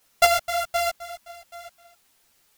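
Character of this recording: a buzz of ramps at a fixed pitch in blocks of 64 samples; chopped level 1.4 Hz, depth 60%, duty 35%; a quantiser's noise floor 12-bit, dither triangular; a shimmering, thickened sound

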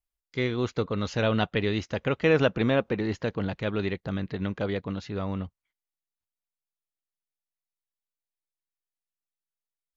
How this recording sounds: noise floor -92 dBFS; spectral tilt -5.5 dB/octave

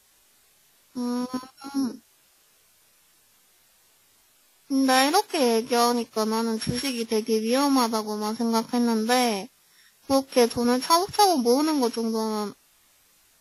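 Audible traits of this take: a buzz of ramps at a fixed pitch in blocks of 8 samples; tremolo triangle 0.71 Hz, depth 30%; a quantiser's noise floor 10-bit, dither triangular; WMA

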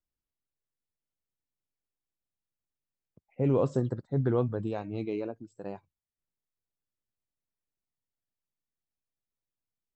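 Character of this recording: noise floor -92 dBFS; spectral tilt -6.5 dB/octave

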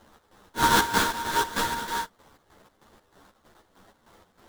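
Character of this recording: a quantiser's noise floor 10-bit, dither triangular; chopped level 3.2 Hz, depth 65%, duty 55%; aliases and images of a low sample rate 2.5 kHz, jitter 20%; a shimmering, thickened sound

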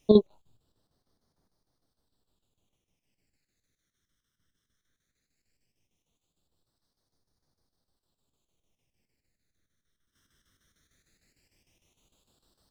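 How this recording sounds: chopped level 6.6 Hz, depth 60%, duty 75%; phasing stages 12, 0.17 Hz, lowest notch 790–2600 Hz

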